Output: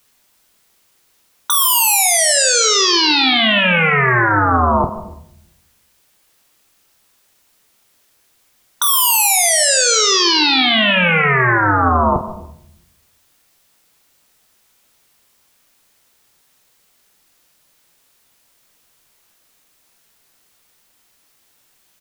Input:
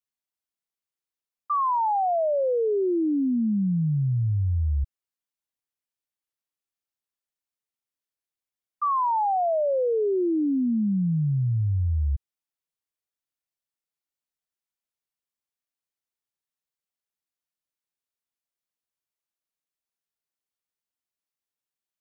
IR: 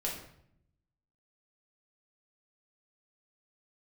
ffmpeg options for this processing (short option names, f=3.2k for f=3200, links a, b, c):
-filter_complex "[0:a]aeval=exprs='0.1*sin(PI/2*10*val(0)/0.1)':c=same,aecho=1:1:23|49:0.299|0.266,asplit=2[a][b];[1:a]atrim=start_sample=2205,adelay=118[c];[b][c]afir=irnorm=-1:irlink=0,volume=-16dB[d];[a][d]amix=inputs=2:normalize=0,volume=8.5dB"